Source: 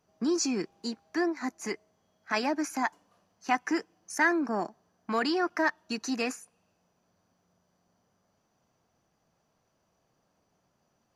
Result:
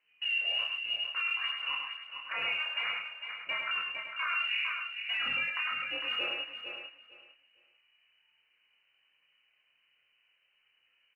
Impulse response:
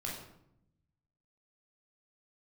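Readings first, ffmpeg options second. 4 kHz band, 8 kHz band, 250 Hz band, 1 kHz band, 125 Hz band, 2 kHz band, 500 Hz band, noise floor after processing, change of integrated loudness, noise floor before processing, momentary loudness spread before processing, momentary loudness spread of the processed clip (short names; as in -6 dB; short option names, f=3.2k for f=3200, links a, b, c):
+9.5 dB, under -30 dB, -29.0 dB, -8.5 dB, n/a, +1.0 dB, -17.0 dB, -73 dBFS, -1.5 dB, -75 dBFS, 12 LU, 9 LU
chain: -filter_complex "[0:a]asplit=2[a][b];[1:a]atrim=start_sample=2205[c];[b][c]afir=irnorm=-1:irlink=0,volume=-13.5dB[d];[a][d]amix=inputs=2:normalize=0,lowpass=f=2.6k:t=q:w=0.5098,lowpass=f=2.6k:t=q:w=0.6013,lowpass=f=2.6k:t=q:w=0.9,lowpass=f=2.6k:t=q:w=2.563,afreqshift=-3100,flanger=delay=17.5:depth=3.3:speed=0.27,acompressor=threshold=-29dB:ratio=6,aphaser=in_gain=1:out_gain=1:delay=1.9:decay=0.28:speed=1.3:type=triangular,asplit=2[e][f];[f]adelay=28,volume=-3dB[g];[e][g]amix=inputs=2:normalize=0,asplit=2[h][i];[i]aecho=0:1:453|906|1359:0.335|0.067|0.0134[j];[h][j]amix=inputs=2:normalize=0,alimiter=level_in=1.5dB:limit=-24dB:level=0:latency=1:release=14,volume=-1.5dB,aecho=1:1:104:0.596"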